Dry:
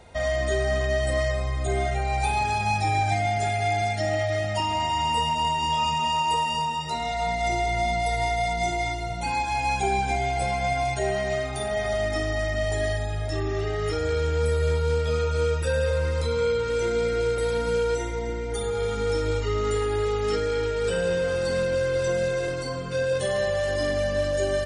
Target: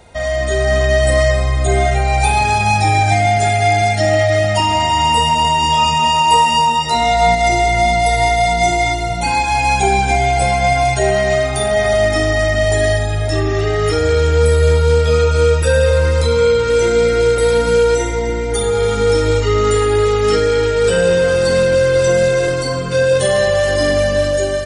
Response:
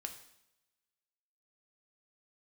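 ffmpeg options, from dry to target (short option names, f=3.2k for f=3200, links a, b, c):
-filter_complex "[0:a]asplit=2[a][b];[1:a]atrim=start_sample=2205,highshelf=f=6.2k:g=11.5[c];[b][c]afir=irnorm=-1:irlink=0,volume=-3.5dB[d];[a][d]amix=inputs=2:normalize=0,dynaudnorm=f=250:g=5:m=6dB,asettb=1/sr,asplit=3[e][f][g];[e]atrim=end=6.304[h];[f]atrim=start=6.3:end=7.35,asetpts=PTS-STARTPTS,afade=t=in:d=0.004:c=qsin,afade=t=out:st=1.046:d=0.004:c=qsin,asplit=2[i][j];[j]adelay=17,volume=-6dB[k];[i][k]amix=inputs=2:normalize=0,atrim=end_sample=46305[l];[g]atrim=start=7.346[m];[h][l]acrossfade=d=0.004:c1=hsin:c2=qsin[n];[n][m]acrossfade=d=0.004:c1=qsin:c2=hsin,volume=2dB"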